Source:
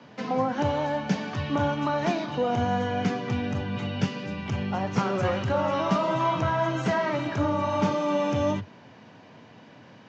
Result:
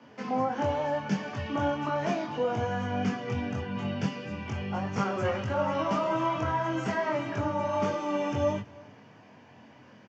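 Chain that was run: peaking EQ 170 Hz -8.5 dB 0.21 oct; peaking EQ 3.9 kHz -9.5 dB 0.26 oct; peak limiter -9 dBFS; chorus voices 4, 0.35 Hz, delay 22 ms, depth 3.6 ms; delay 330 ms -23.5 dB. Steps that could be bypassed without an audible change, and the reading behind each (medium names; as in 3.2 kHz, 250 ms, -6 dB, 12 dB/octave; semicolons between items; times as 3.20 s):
peak limiter -9 dBFS: peak at its input -12.0 dBFS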